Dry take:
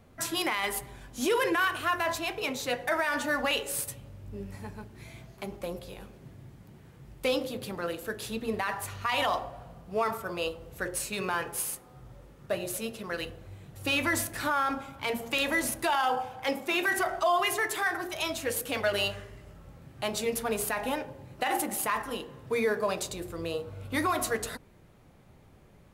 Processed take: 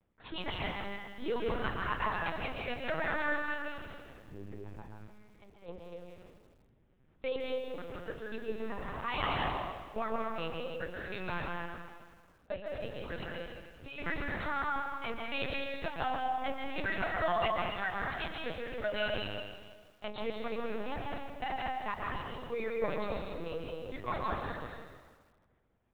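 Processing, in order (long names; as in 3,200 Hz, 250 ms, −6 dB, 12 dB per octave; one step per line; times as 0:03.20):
noise gate −43 dBFS, range −12 dB
gate pattern "x.xx.xxxxxx..x.x" 119 BPM −12 dB
dense smooth reverb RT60 1.5 s, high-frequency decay 0.8×, pre-delay 115 ms, DRR −1.5 dB
linear-prediction vocoder at 8 kHz pitch kept
feedback echo at a low word length 160 ms, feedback 55%, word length 8 bits, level −15 dB
level −7.5 dB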